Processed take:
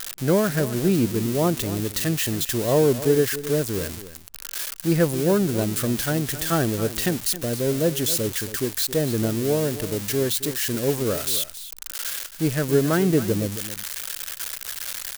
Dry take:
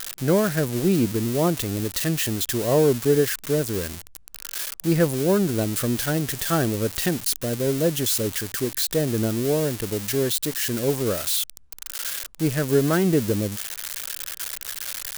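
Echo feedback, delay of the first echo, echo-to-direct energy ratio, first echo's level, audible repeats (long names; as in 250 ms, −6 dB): repeats not evenly spaced, 271 ms, −14.0 dB, −14.0 dB, 1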